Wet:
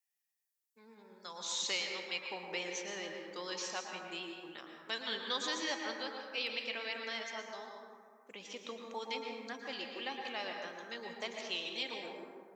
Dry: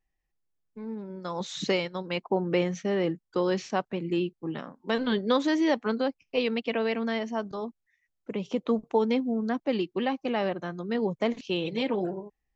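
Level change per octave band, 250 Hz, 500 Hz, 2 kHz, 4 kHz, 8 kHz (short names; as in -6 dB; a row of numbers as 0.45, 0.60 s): -21.0 dB, -16.0 dB, -4.5 dB, -1.0 dB, n/a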